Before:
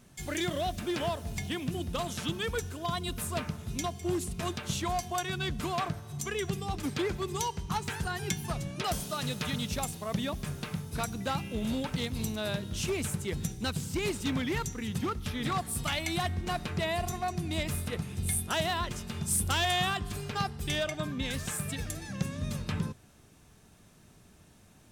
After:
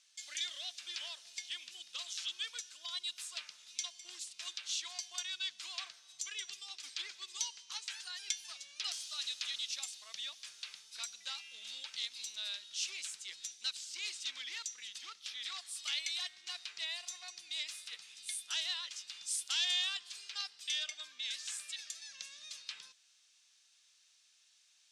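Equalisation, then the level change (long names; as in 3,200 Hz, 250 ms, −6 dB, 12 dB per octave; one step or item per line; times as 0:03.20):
resonant band-pass 4,500 Hz, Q 1.1
high-frequency loss of the air 99 metres
first difference
+10.0 dB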